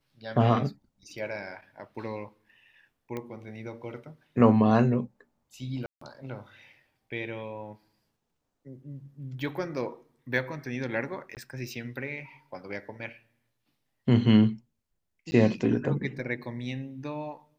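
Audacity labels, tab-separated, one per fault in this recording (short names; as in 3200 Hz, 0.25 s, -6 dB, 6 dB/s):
3.170000	3.170000	pop -22 dBFS
5.860000	6.010000	gap 0.154 s
11.350000	11.370000	gap 18 ms
15.310000	15.320000	gap 10 ms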